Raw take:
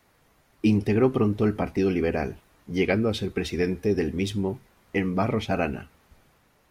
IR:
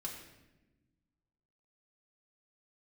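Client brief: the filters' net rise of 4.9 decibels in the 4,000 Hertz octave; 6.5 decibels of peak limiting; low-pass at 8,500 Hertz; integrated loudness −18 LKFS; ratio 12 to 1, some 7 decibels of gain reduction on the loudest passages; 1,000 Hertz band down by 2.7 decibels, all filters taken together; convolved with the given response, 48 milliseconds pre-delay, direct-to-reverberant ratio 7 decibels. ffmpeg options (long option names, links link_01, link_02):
-filter_complex "[0:a]lowpass=8500,equalizer=frequency=1000:width_type=o:gain=-4.5,equalizer=frequency=4000:width_type=o:gain=6.5,acompressor=threshold=-23dB:ratio=12,alimiter=limit=-21dB:level=0:latency=1,asplit=2[link_01][link_02];[1:a]atrim=start_sample=2205,adelay=48[link_03];[link_02][link_03]afir=irnorm=-1:irlink=0,volume=-5.5dB[link_04];[link_01][link_04]amix=inputs=2:normalize=0,volume=12dB"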